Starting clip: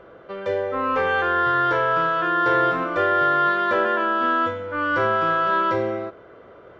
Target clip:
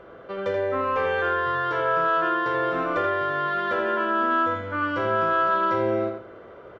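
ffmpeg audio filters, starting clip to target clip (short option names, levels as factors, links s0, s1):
-filter_complex "[0:a]acompressor=threshold=0.0794:ratio=6,asplit=2[s0][s1];[s1]adelay=82,lowpass=f=4600:p=1,volume=0.562,asplit=2[s2][s3];[s3]adelay=82,lowpass=f=4600:p=1,volume=0.27,asplit=2[s4][s5];[s5]adelay=82,lowpass=f=4600:p=1,volume=0.27,asplit=2[s6][s7];[s7]adelay=82,lowpass=f=4600:p=1,volume=0.27[s8];[s0][s2][s4][s6][s8]amix=inputs=5:normalize=0"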